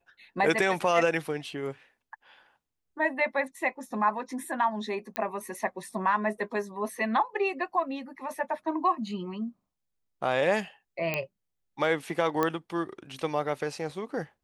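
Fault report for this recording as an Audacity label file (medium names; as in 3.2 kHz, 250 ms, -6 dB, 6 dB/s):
5.160000	5.160000	pop -13 dBFS
11.140000	11.140000	pop -14 dBFS
12.430000	12.430000	pop -13 dBFS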